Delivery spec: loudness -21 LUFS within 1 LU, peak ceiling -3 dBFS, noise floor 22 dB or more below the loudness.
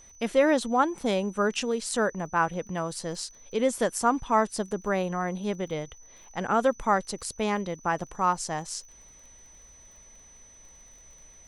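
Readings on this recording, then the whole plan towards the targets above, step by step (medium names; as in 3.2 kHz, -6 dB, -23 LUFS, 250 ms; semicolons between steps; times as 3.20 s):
tick rate 28 per s; steady tone 6 kHz; tone level -51 dBFS; loudness -27.5 LUFS; peak level -10.5 dBFS; loudness target -21.0 LUFS
-> de-click; band-stop 6 kHz, Q 30; trim +6.5 dB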